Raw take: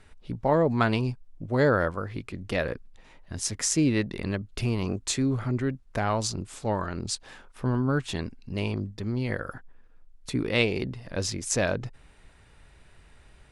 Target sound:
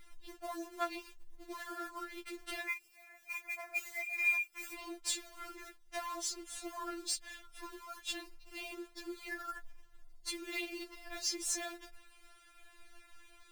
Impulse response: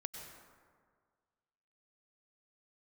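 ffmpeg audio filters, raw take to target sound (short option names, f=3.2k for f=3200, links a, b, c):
-filter_complex "[0:a]asettb=1/sr,asplit=3[a][b][c];[a]atrim=end=2.684[d];[b]atrim=start=2.68:end=4.74,asetpts=PTS-STARTPTS,afade=t=in:d=0.004:c=qsin,afade=t=out:st=2.056:d=0.004:c=qsin,lowpass=f=2.2k:t=q:w=0.5098,lowpass=f=2.2k:t=q:w=0.6013,lowpass=f=2.2k:t=q:w=0.9,lowpass=f=2.2k:t=q:w=2.563,afreqshift=-2600[e];[c]atrim=start=4.736[f];[d][e]acrossfade=d=0.004:c1=hsin:c2=qsin[g];[g][f]acrossfade=d=0.004:c1=qsin:c2=hsin,acompressor=threshold=-30dB:ratio=16,tiltshelf=f=860:g=-4.5,acrusher=bits=3:mode=log:mix=0:aa=0.000001,afftfilt=real='re*4*eq(mod(b,16),0)':imag='im*4*eq(mod(b,16),0)':win_size=2048:overlap=0.75,volume=-2dB"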